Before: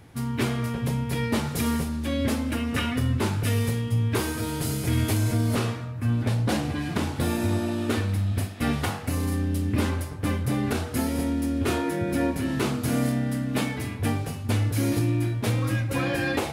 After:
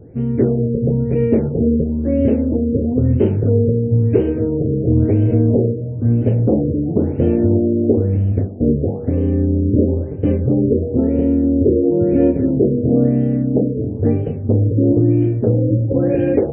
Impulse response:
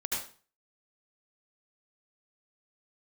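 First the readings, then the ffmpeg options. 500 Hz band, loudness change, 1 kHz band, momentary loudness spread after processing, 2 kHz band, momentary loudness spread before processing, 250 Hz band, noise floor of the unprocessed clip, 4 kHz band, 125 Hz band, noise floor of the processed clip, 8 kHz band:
+14.0 dB, +10.0 dB, −6.0 dB, 4 LU, below −10 dB, 4 LU, +11.0 dB, −34 dBFS, below −20 dB, +9.0 dB, −24 dBFS, below −40 dB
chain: -filter_complex "[0:a]lowshelf=frequency=710:width_type=q:width=3:gain=14,asplit=2[link_01][link_02];[1:a]atrim=start_sample=2205,afade=type=out:start_time=0.31:duration=0.01,atrim=end_sample=14112,adelay=74[link_03];[link_02][link_03]afir=irnorm=-1:irlink=0,volume=-28dB[link_04];[link_01][link_04]amix=inputs=2:normalize=0,afftfilt=real='re*lt(b*sr/1024,600*pow(3200/600,0.5+0.5*sin(2*PI*1*pts/sr)))':imag='im*lt(b*sr/1024,600*pow(3200/600,0.5+0.5*sin(2*PI*1*pts/sr)))':win_size=1024:overlap=0.75,volume=-5.5dB"

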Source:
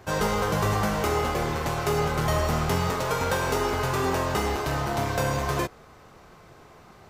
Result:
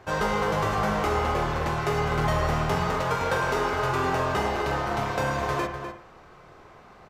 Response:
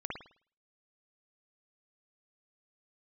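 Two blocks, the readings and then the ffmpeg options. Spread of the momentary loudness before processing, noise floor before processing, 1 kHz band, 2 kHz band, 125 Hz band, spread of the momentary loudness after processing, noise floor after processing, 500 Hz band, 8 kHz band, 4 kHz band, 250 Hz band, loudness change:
3 LU, −51 dBFS, +1.5 dB, +1.5 dB, −1.5 dB, 3 LU, −51 dBFS, −0.5 dB, −6.5 dB, −2.0 dB, −1.5 dB, 0.0 dB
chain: -filter_complex "[0:a]lowpass=frequency=2600:poles=1,lowshelf=frequency=360:gain=-7.5,asplit=2[link_01][link_02];[link_02]adelay=250.7,volume=-8dB,highshelf=frequency=4000:gain=-5.64[link_03];[link_01][link_03]amix=inputs=2:normalize=0,asplit=2[link_04][link_05];[1:a]atrim=start_sample=2205,lowshelf=frequency=95:gain=10.5[link_06];[link_05][link_06]afir=irnorm=-1:irlink=0,volume=-7.5dB[link_07];[link_04][link_07]amix=inputs=2:normalize=0"

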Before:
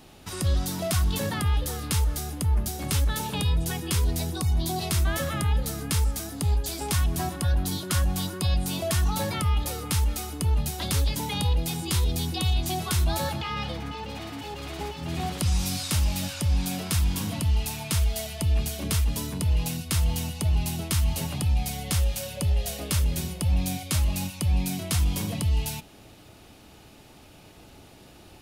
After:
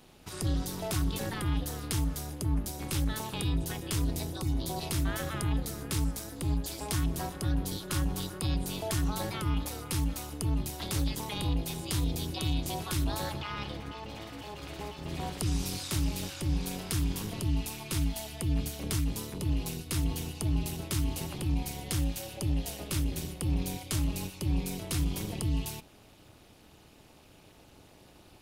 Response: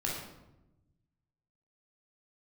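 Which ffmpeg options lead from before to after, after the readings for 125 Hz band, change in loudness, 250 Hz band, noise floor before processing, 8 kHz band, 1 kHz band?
−6.5 dB, −6.0 dB, −2.0 dB, −50 dBFS, −6.5 dB, −6.5 dB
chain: -af "tremolo=f=220:d=0.857,volume=-2.5dB"

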